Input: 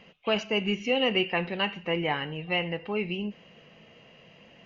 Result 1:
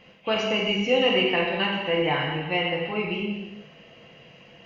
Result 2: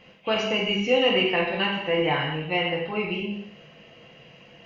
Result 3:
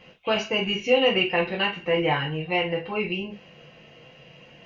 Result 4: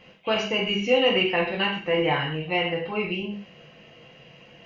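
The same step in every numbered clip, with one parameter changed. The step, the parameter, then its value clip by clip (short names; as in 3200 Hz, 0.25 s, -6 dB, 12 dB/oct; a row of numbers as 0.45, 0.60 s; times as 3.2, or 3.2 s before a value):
non-linear reverb, gate: 410, 280, 90, 170 ms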